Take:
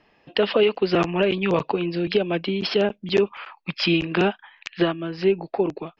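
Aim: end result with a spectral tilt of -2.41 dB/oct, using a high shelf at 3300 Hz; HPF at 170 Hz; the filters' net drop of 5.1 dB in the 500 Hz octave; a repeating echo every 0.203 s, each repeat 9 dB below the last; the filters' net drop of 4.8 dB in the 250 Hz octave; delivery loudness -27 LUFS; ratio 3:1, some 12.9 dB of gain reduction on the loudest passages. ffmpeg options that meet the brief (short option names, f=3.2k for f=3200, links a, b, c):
-af "highpass=170,equalizer=f=250:t=o:g=-3.5,equalizer=f=500:t=o:g=-5.5,highshelf=f=3.3k:g=5,acompressor=threshold=-36dB:ratio=3,aecho=1:1:203|406|609|812:0.355|0.124|0.0435|0.0152,volume=8.5dB"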